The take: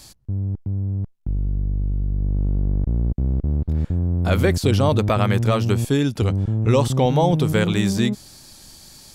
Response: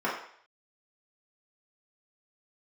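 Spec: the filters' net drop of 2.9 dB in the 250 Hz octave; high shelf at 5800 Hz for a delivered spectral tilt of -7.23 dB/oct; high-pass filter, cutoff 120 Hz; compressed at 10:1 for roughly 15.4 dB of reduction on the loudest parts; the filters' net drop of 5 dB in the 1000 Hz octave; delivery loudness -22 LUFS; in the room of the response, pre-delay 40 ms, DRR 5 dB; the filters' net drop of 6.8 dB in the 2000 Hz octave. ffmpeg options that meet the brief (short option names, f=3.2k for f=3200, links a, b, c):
-filter_complex "[0:a]highpass=120,equalizer=f=250:t=o:g=-3,equalizer=f=1k:t=o:g=-5,equalizer=f=2k:t=o:g=-6.5,highshelf=f=5.8k:g=-6,acompressor=threshold=-32dB:ratio=10,asplit=2[a][b];[1:a]atrim=start_sample=2205,adelay=40[c];[b][c]afir=irnorm=-1:irlink=0,volume=-16.5dB[d];[a][d]amix=inputs=2:normalize=0,volume=15dB"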